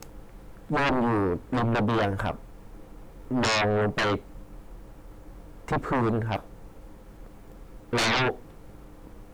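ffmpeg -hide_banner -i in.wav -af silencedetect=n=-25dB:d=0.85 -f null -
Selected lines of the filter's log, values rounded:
silence_start: 2.31
silence_end: 3.31 | silence_duration: 1.00
silence_start: 4.16
silence_end: 5.68 | silence_duration: 1.52
silence_start: 6.36
silence_end: 7.93 | silence_duration: 1.57
silence_start: 8.31
silence_end: 9.33 | silence_duration: 1.03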